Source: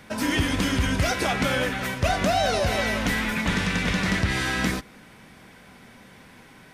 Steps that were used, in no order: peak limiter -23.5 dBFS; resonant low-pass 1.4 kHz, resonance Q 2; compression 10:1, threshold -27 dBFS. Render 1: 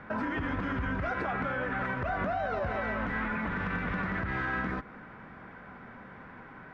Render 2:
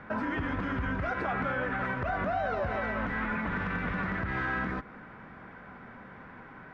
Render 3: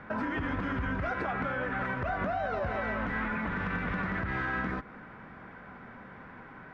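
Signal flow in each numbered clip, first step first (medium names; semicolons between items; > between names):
compression > resonant low-pass > peak limiter; compression > peak limiter > resonant low-pass; resonant low-pass > compression > peak limiter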